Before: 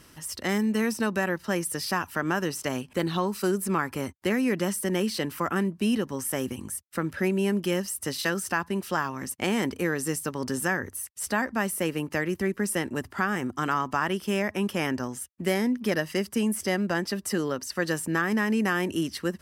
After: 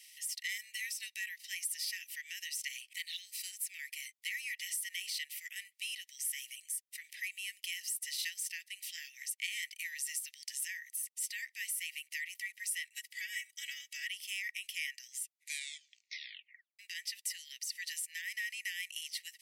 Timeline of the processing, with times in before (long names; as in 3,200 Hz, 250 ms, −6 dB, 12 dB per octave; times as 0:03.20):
0:12.93–0:14.07: comb filter 3.1 ms, depth 87%
0:15.18: tape stop 1.61 s
whole clip: Chebyshev high-pass filter 1,900 Hz, order 8; downward compressor 1.5 to 1, threshold −44 dBFS; level +1 dB